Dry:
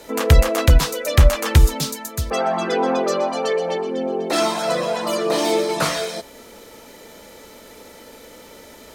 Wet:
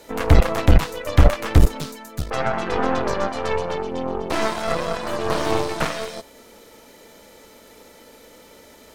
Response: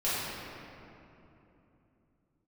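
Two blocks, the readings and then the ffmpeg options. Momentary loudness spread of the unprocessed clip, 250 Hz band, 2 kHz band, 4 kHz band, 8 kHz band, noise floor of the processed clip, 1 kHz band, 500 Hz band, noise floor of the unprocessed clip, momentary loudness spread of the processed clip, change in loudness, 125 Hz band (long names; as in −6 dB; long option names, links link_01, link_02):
9 LU, −0.5 dB, −1.5 dB, −6.0 dB, −8.5 dB, −48 dBFS, −1.5 dB, −3.5 dB, −43 dBFS, 10 LU, −2.5 dB, −1.5 dB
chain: -filter_complex "[0:a]acrossover=split=2800[link_01][link_02];[link_02]acompressor=threshold=-33dB:ratio=4:attack=1:release=60[link_03];[link_01][link_03]amix=inputs=2:normalize=0,aeval=exprs='0.891*(cos(1*acos(clip(val(0)/0.891,-1,1)))-cos(1*PI/2))+0.0891*(cos(3*acos(clip(val(0)/0.891,-1,1)))-cos(3*PI/2))+0.2*(cos(6*acos(clip(val(0)/0.891,-1,1)))-cos(6*PI/2))':channel_layout=same,volume=-1.5dB"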